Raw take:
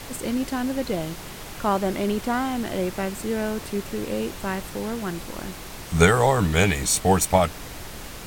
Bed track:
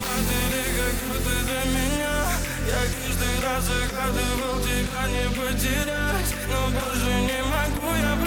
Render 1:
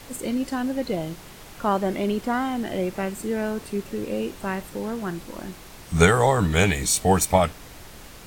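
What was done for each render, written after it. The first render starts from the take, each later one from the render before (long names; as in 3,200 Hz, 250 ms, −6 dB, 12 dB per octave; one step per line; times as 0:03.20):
noise reduction from a noise print 6 dB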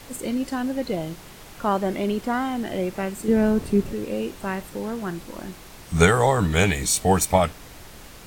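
0:03.28–0:03.93: low-shelf EQ 440 Hz +11.5 dB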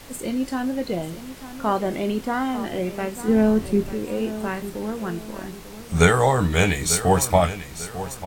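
double-tracking delay 23 ms −10.5 dB
repeating echo 895 ms, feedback 37%, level −13 dB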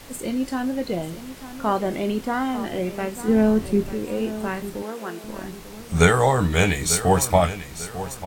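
0:04.82–0:05.24: high-pass filter 340 Hz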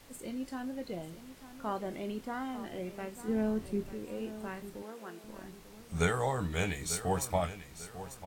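level −13.5 dB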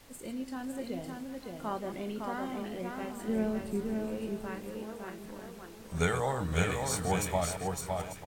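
delay that plays each chunk backwards 113 ms, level −11 dB
single-tap delay 559 ms −4 dB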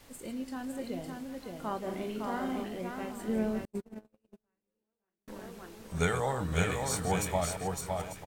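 0:01.78–0:02.64: flutter between parallel walls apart 7.2 metres, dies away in 0.44 s
0:03.65–0:05.28: noise gate −31 dBFS, range −46 dB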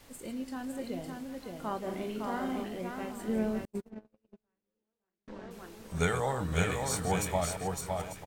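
0:03.90–0:05.51: high-frequency loss of the air 140 metres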